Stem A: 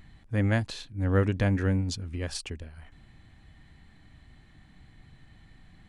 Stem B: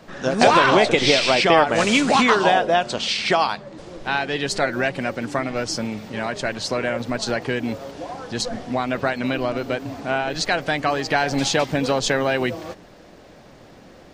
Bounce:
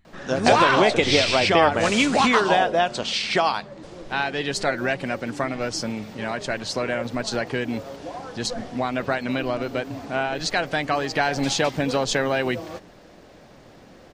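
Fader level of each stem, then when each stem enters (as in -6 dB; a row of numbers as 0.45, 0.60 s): -10.5, -2.0 dB; 0.00, 0.05 s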